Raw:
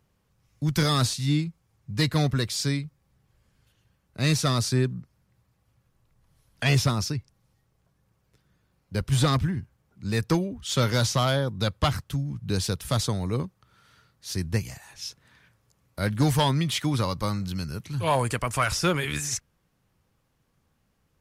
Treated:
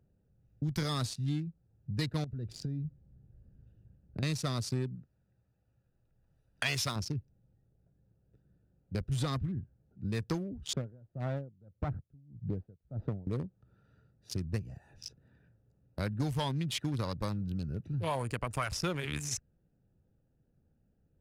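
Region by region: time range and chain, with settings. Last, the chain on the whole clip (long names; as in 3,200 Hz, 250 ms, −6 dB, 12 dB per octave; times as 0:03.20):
0:02.24–0:04.23: low-shelf EQ 310 Hz +9 dB + downward compressor 10 to 1, threshold −30 dBFS
0:04.95–0:06.96: one scale factor per block 7 bits + tilt shelving filter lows −6.5 dB, about 660 Hz
0:10.73–0:13.27: phase distortion by the signal itself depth 0.12 ms + Bessel low-pass filter 960 Hz + tremolo with a sine in dB 1.7 Hz, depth 31 dB
whole clip: adaptive Wiener filter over 41 samples; downward compressor 3 to 1, threshold −33 dBFS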